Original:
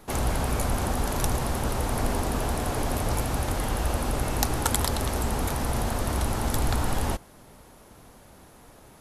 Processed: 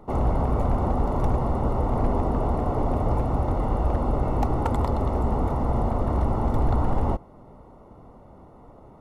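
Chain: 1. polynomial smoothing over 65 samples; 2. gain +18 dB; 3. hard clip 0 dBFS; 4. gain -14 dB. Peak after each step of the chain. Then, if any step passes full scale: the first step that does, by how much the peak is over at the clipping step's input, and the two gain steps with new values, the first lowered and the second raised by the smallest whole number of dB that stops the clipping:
-12.0, +6.0, 0.0, -14.0 dBFS; step 2, 6.0 dB; step 2 +12 dB, step 4 -8 dB

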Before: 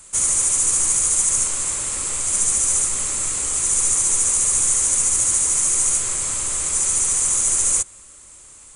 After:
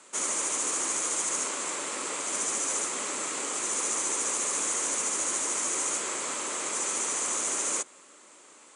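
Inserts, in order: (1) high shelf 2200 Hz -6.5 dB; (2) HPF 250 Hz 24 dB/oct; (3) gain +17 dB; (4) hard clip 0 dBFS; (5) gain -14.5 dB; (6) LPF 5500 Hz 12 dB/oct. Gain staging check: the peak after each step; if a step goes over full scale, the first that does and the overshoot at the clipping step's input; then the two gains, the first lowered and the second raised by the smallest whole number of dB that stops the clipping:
-9.5, -10.0, +7.0, 0.0, -14.5, -18.5 dBFS; step 3, 7.0 dB; step 3 +10 dB, step 5 -7.5 dB

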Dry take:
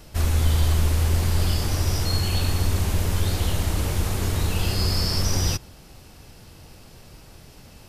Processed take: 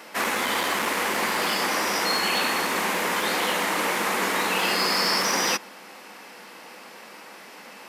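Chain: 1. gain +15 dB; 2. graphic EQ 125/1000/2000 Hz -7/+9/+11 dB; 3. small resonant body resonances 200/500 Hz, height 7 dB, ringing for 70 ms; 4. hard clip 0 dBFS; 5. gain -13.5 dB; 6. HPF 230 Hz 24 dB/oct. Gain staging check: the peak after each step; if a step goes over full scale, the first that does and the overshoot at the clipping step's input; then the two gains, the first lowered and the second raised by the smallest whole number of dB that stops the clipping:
+6.0, +7.0, +7.0, 0.0, -13.5, -11.5 dBFS; step 1, 7.0 dB; step 1 +8 dB, step 5 -6.5 dB

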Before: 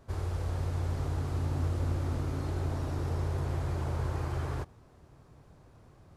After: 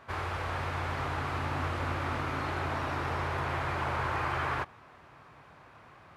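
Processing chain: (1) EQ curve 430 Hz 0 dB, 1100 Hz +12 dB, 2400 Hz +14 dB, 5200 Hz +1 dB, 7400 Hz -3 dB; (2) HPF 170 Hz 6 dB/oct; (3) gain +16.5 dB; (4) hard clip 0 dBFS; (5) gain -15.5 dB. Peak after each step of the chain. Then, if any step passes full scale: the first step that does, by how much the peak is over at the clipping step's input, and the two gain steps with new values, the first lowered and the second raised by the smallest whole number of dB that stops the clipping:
-18.0, -20.0, -3.5, -3.5, -19.0 dBFS; no overload

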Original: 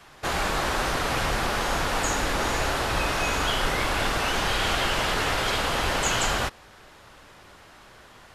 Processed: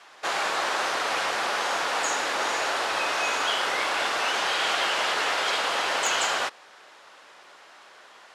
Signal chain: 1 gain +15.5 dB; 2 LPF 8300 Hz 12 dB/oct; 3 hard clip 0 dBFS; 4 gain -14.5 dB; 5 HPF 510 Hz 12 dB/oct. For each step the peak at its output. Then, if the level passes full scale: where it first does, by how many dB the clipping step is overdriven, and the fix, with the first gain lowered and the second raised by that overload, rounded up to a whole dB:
+6.0, +5.5, 0.0, -14.5, -12.5 dBFS; step 1, 5.5 dB; step 1 +9.5 dB, step 4 -8.5 dB

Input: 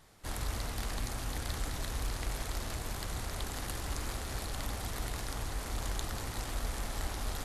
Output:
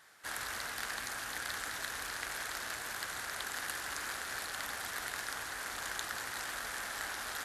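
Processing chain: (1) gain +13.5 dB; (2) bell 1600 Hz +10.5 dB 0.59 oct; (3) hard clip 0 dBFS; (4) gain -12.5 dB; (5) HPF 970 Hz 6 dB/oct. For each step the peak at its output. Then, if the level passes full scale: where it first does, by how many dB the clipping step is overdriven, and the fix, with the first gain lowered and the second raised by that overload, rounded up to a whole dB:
-4.0, -4.0, -4.0, -16.5, -17.0 dBFS; no overload

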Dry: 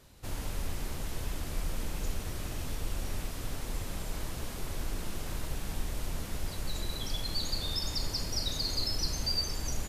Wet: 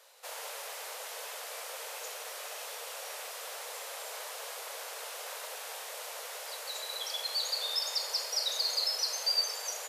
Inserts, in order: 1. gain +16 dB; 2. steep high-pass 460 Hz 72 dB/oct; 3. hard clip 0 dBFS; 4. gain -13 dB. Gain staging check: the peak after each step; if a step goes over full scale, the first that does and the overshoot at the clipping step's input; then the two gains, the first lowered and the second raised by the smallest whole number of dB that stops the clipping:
-1.5, -5.0, -5.0, -18.0 dBFS; no overload

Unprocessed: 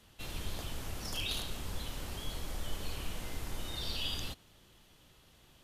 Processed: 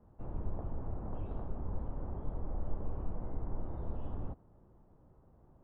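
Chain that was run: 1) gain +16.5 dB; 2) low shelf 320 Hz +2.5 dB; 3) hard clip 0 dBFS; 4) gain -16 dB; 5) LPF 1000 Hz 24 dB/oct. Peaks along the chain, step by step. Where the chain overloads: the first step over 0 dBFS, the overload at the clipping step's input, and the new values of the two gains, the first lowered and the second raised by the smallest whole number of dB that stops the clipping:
-6.0, -5.0, -5.0, -21.0, -22.5 dBFS; no overload

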